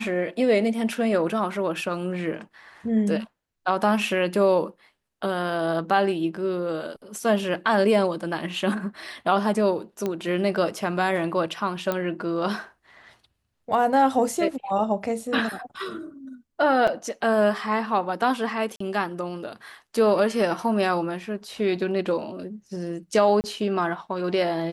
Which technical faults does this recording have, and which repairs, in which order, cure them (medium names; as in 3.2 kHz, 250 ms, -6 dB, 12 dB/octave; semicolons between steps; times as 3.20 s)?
10.06 s: pop -14 dBFS
11.92 s: pop -12 dBFS
16.87–16.88 s: dropout 5.4 ms
18.76–18.80 s: dropout 44 ms
23.41–23.44 s: dropout 29 ms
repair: de-click; interpolate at 16.87 s, 5.4 ms; interpolate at 18.76 s, 44 ms; interpolate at 23.41 s, 29 ms